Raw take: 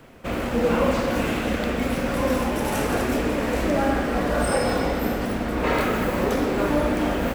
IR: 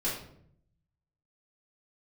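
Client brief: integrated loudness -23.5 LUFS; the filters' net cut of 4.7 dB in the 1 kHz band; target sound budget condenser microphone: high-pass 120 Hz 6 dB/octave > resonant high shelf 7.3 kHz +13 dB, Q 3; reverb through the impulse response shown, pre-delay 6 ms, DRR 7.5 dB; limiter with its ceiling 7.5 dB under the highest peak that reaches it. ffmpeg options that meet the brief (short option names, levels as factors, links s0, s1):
-filter_complex "[0:a]equalizer=f=1000:t=o:g=-6,alimiter=limit=0.126:level=0:latency=1,asplit=2[s0][s1];[1:a]atrim=start_sample=2205,adelay=6[s2];[s1][s2]afir=irnorm=-1:irlink=0,volume=0.2[s3];[s0][s3]amix=inputs=2:normalize=0,highpass=f=120:p=1,highshelf=f=7300:t=q:w=3:g=13,volume=1.12"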